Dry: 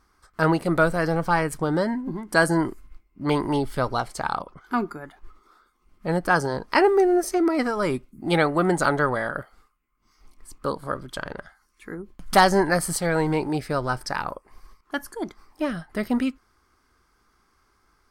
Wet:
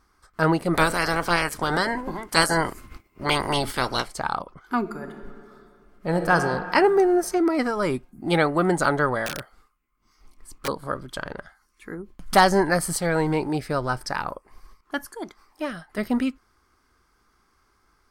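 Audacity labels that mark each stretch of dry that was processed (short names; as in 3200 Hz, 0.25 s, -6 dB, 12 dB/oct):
0.730000	4.050000	spectral limiter ceiling under each frame's peak by 21 dB
4.790000	6.350000	reverb throw, RT60 2.3 s, DRR 4.5 dB
9.260000	10.680000	wrapped overs gain 22 dB
15.050000	15.980000	low shelf 360 Hz -8.5 dB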